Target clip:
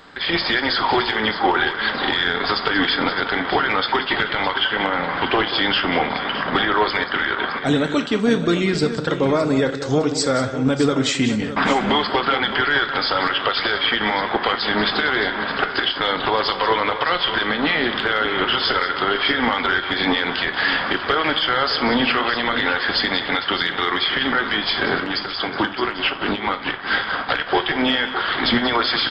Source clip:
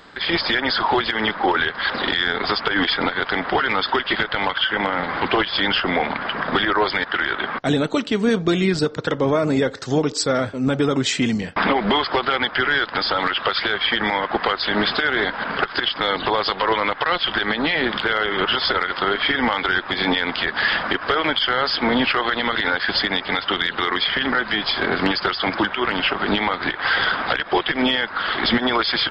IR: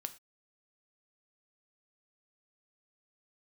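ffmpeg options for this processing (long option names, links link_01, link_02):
-filter_complex "[0:a]asettb=1/sr,asplit=3[link_01][link_02][link_03];[link_01]atrim=end=24.954[link_04];[link_02]atrim=start=24.95:end=27.29,asetpts=PTS-STARTPTS,afade=type=in:duration=0.004:curve=qsin,afade=type=out:start_time=2.336:duration=0.004:curve=qsin,tremolo=f=4.5:d=0.72[link_05];[link_03]atrim=start=27.286[link_06];[link_04][link_05]acrossfade=duration=0.004:curve1=hsin:curve2=qsin[link_07];[link_07][link_06]acrossfade=duration=0.004:curve1=qsin:curve2=hsin,aecho=1:1:185|615:0.237|0.266[link_08];[1:a]atrim=start_sample=2205[link_09];[link_08][link_09]afir=irnorm=-1:irlink=0,volume=2.5dB"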